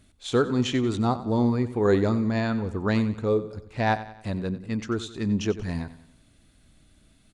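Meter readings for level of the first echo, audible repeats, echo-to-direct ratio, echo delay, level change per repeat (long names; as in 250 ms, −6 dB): −14.5 dB, 4, −13.5 dB, 92 ms, −6.5 dB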